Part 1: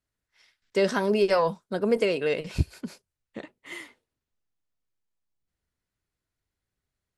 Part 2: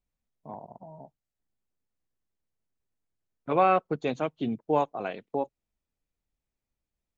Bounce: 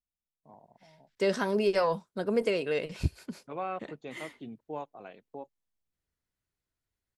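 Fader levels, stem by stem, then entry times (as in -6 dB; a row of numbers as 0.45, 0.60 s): -4.0, -13.5 dB; 0.45, 0.00 s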